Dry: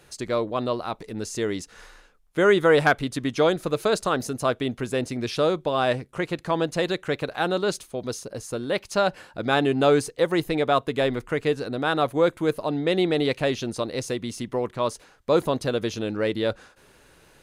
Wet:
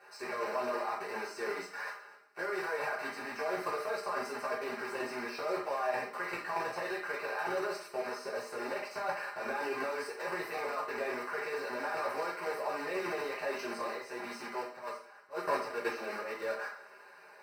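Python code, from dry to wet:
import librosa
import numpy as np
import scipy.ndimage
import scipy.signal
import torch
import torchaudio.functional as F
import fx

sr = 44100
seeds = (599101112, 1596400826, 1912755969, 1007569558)

y = fx.block_float(x, sr, bits=3)
y = scipy.signal.sosfilt(scipy.signal.butter(2, 870.0, 'highpass', fs=sr, output='sos'), y)
y = y + 0.76 * np.pad(y, (int(4.9 * sr / 1000.0), 0))[:len(y)]
y = fx.transient(y, sr, attack_db=-5, sustain_db=1)
y = fx.level_steps(y, sr, step_db=16)
y = fx.auto_swell(y, sr, attack_ms=413.0, at=(13.95, 16.38), fade=0.02)
y = fx.over_compress(y, sr, threshold_db=-39.0, ratio=-1.0)
y = np.convolve(y, np.full(13, 1.0 / 13))[:len(y)]
y = fx.rev_double_slope(y, sr, seeds[0], early_s=0.47, late_s=1.7, knee_db=-22, drr_db=-6.5)
y = F.gain(torch.from_numpy(y), 2.0).numpy()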